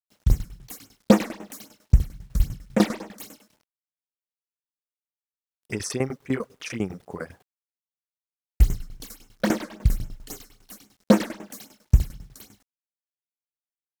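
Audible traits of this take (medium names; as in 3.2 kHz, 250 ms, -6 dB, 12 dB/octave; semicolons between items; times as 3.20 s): phasing stages 8, 3.7 Hz, lowest notch 100–4500 Hz; a quantiser's noise floor 10-bit, dither none; tremolo saw down 10 Hz, depth 85%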